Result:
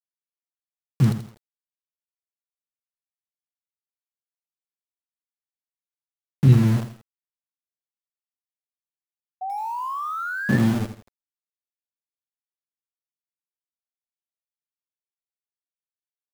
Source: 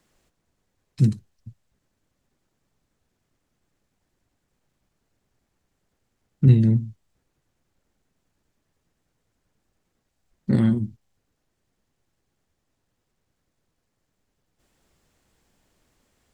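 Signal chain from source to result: sample gate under -25 dBFS; painted sound rise, 9.41–10.58, 740–1800 Hz -29 dBFS; lo-fi delay 83 ms, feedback 35%, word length 7-bit, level -10 dB

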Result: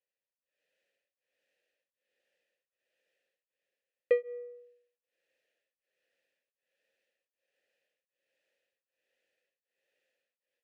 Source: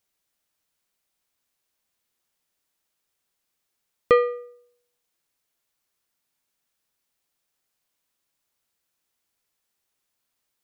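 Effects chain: AGC gain up to 16 dB; vowel filter e; beating tremolo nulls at 1.3 Hz

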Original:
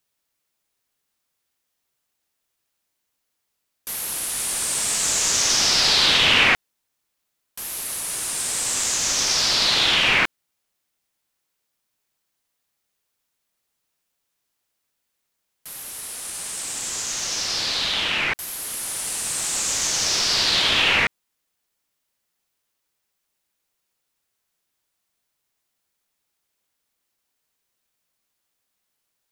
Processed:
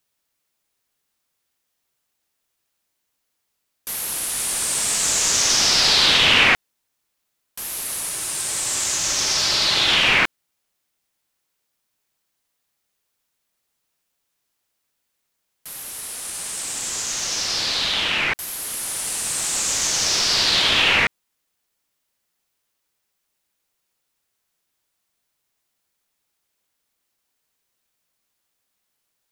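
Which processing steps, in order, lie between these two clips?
8.09–9.89 notch comb 240 Hz; gain +1.5 dB

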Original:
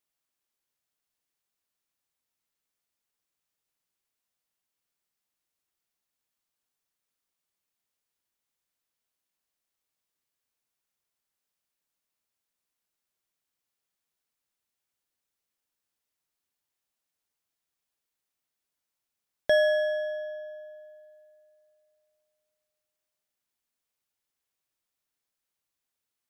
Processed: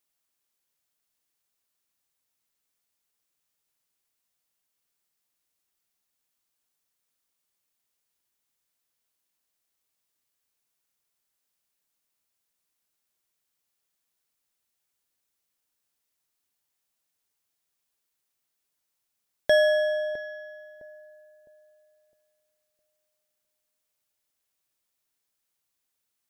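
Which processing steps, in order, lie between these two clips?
high shelf 4800 Hz +4.5 dB; on a send: darkening echo 0.659 s, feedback 36%, low-pass 870 Hz, level -13 dB; on the sum: gain +2 dB

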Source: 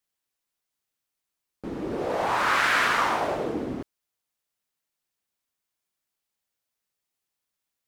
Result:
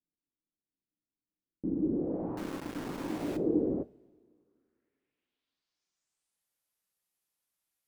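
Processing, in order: low-pass sweep 290 Hz -> 12000 Hz, 3.31–6.48; 2.37–3.37 sample gate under -35 dBFS; two-slope reverb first 0.24 s, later 2.2 s, from -22 dB, DRR 12 dB; gain -3.5 dB

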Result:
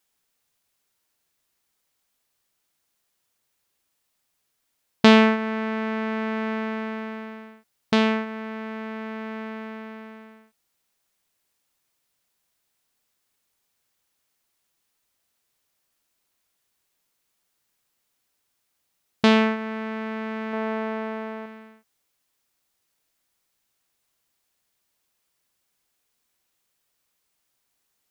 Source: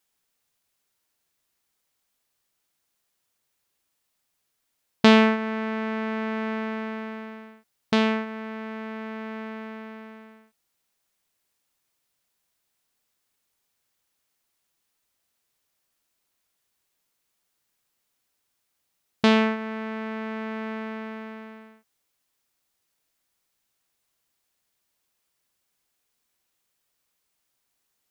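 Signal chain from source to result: 20.53–21.46 bell 630 Hz +7.5 dB 1.8 oct; gain +1.5 dB

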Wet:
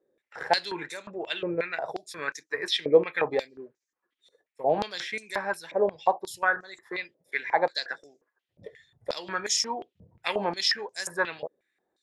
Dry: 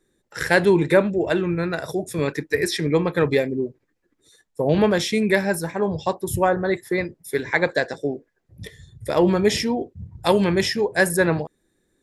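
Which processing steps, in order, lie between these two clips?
stepped band-pass 5.6 Hz 550–6300 Hz; gain +6.5 dB

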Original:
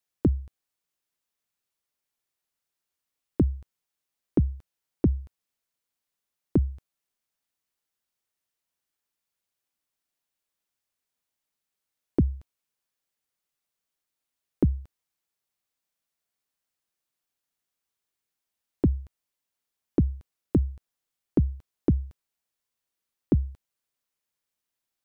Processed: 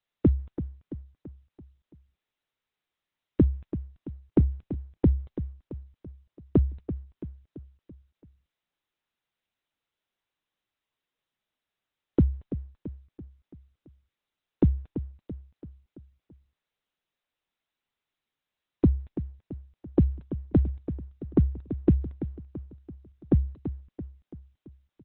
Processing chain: on a send: feedback echo 0.335 s, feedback 52%, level -12 dB; on the sum: gain +1.5 dB; Opus 8 kbps 48000 Hz

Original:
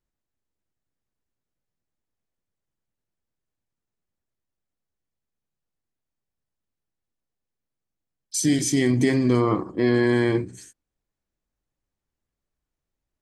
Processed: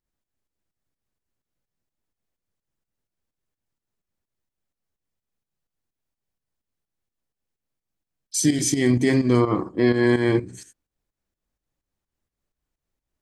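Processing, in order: pump 127 bpm, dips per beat 2, -11 dB, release 0.188 s; gain +2.5 dB

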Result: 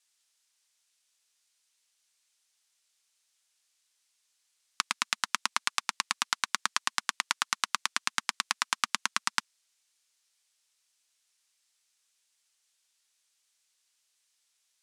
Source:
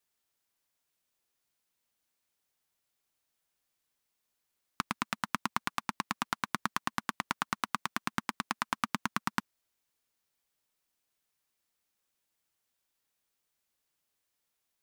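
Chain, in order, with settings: weighting filter ITU-R 468

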